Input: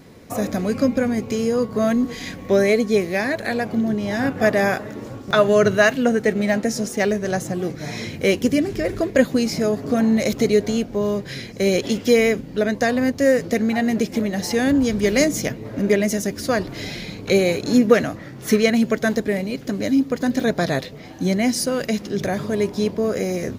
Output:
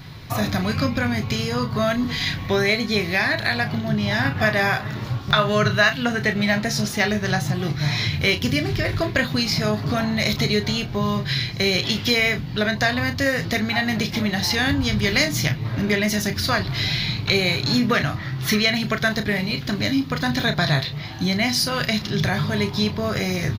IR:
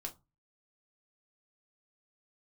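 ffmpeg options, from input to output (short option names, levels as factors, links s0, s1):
-filter_complex "[0:a]equalizer=f=125:t=o:w=1:g=10,equalizer=f=250:t=o:w=1:g=-10,equalizer=f=500:t=o:w=1:g=-12,equalizer=f=1000:t=o:w=1:g=3,equalizer=f=4000:t=o:w=1:g=9,equalizer=f=8000:t=o:w=1:g=-12,acompressor=threshold=0.0501:ratio=2,asplit=2[s0][s1];[s1]adelay=33,volume=0.355[s2];[s0][s2]amix=inputs=2:normalize=0,asplit=2[s3][s4];[1:a]atrim=start_sample=2205[s5];[s4][s5]afir=irnorm=-1:irlink=0,volume=0.562[s6];[s3][s6]amix=inputs=2:normalize=0,volume=1.58"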